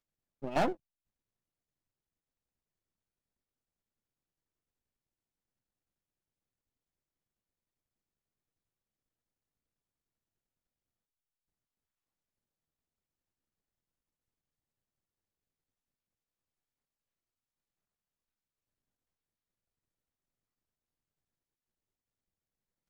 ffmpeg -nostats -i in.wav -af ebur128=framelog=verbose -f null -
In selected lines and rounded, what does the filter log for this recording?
Integrated loudness:
  I:         -33.2 LUFS
  Threshold: -44.6 LUFS
Loudness range:
  LRA:        15.7 LU
  Threshold: -61.8 LUFS
  LRA low:   -56.6 LUFS
  LRA high:  -40.9 LUFS